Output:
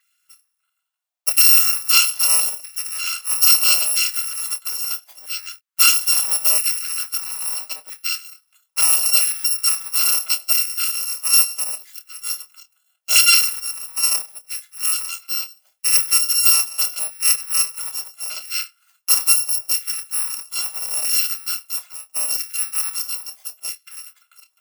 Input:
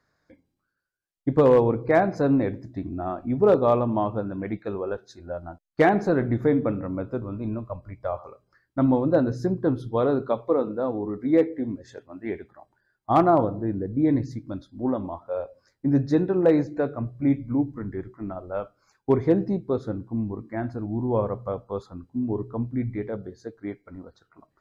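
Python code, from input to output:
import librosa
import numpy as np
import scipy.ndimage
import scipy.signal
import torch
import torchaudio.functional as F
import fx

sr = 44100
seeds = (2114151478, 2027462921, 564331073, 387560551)

y = fx.bit_reversed(x, sr, seeds[0], block=256)
y = fx.doubler(y, sr, ms=27.0, db=-10.5)
y = fx.filter_lfo_highpass(y, sr, shape='saw_down', hz=0.76, low_hz=630.0, high_hz=1900.0, q=1.9)
y = fx.upward_expand(y, sr, threshold_db=-36.0, expansion=1.5, at=(13.59, 14.5), fade=0.02)
y = y * librosa.db_to_amplitude(4.0)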